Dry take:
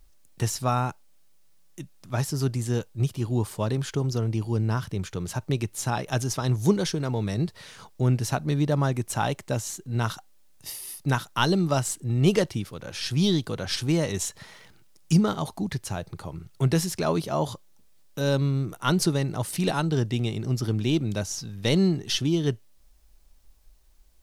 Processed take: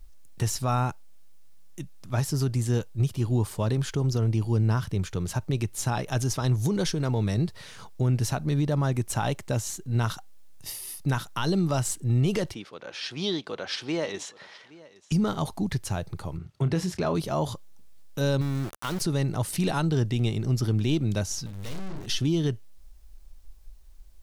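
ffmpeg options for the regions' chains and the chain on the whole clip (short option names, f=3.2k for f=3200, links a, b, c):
-filter_complex "[0:a]asettb=1/sr,asplit=3[a][b][c];[a]atrim=end=12.544[d];[b]atrim=start=12.54:end=15.12,asetpts=PTS-STARTPTS,afade=t=in:d=0.004:c=qsin,afade=t=out:st=2.576:d=0.004:c=qsin,highpass=380,lowpass=4.3k,aecho=1:1:820:0.0891,atrim=end_sample=113778[e];[c]atrim=start=15.116[f];[d][e]acrossfade=d=0.004:c1=hsin:c2=qsin[g];[g][f]acrossfade=d=0.004:c1=qsin:c2=hsin,asettb=1/sr,asplit=3[h][i][j];[h]atrim=end=16.374[k];[i]atrim=start=16.37:end=17.15,asetpts=PTS-STARTPTS,afade=t=in:d=0.004:c=qsin,afade=t=out:st=0.776:d=0.004:c=qsin,highpass=45,aemphasis=mode=reproduction:type=50fm,asplit=2[l][m];[m]adelay=28,volume=-11dB[n];[l][n]amix=inputs=2:normalize=0,atrim=end_sample=34398[o];[j]atrim=start=17.146[p];[k][o]acrossfade=d=0.004:c1=hsin:c2=qsin[q];[q][p]acrossfade=d=0.004:c1=qsin:c2=hsin,asettb=1/sr,asplit=3[r][s][t];[r]atrim=end=18.414[u];[s]atrim=start=18.41:end=19.01,asetpts=PTS-STARTPTS,afade=t=in:d=0.004:c=qsin,afade=t=out:st=0.596:d=0.004:c=qsin,lowshelf=f=110:g=-7,acompressor=threshold=-26dB:ratio=6:attack=3.2:release=140:knee=1:detection=peak,aeval=exprs='val(0)*gte(abs(val(0)),0.0211)':c=same[v];[t]atrim=start=19.006[w];[u][v]acrossfade=d=0.004:c1=hsin:c2=qsin[x];[x][w]acrossfade=d=0.004:c1=qsin:c2=hsin,asettb=1/sr,asplit=3[y][z][aa];[y]atrim=end=21.464[ab];[z]atrim=start=21.46:end=22.06,asetpts=PTS-STARTPTS,afade=t=in:d=0.004:c=qsin,afade=t=out:st=0.596:d=0.004:c=qsin,aeval=exprs='val(0)+0.5*0.015*sgn(val(0))':c=same,asplit=2[ac][ad];[ad]adelay=42,volume=-5.5dB[ae];[ac][ae]amix=inputs=2:normalize=0,atrim=end_sample=26460,aeval=exprs='(tanh(79.4*val(0)+0.6)-tanh(0.6))/79.4':c=same[af];[aa]atrim=start=22.056[ag];[ab][af]acrossfade=d=0.004:c1=hsin:c2=qsin[ah];[ah][ag]acrossfade=d=0.004:c1=qsin:c2=hsin,lowshelf=f=64:g=11.5,alimiter=limit=-17dB:level=0:latency=1:release=58"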